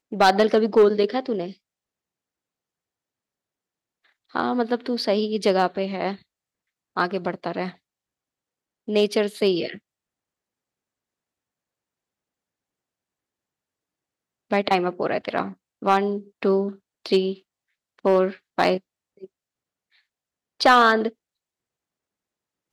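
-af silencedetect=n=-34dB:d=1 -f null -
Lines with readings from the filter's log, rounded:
silence_start: 1.51
silence_end: 4.35 | silence_duration: 2.84
silence_start: 7.70
silence_end: 8.88 | silence_duration: 1.18
silence_start: 9.77
silence_end: 14.51 | silence_duration: 4.75
silence_start: 19.25
silence_end: 20.61 | silence_duration: 1.36
silence_start: 21.09
silence_end: 22.72 | silence_duration: 1.63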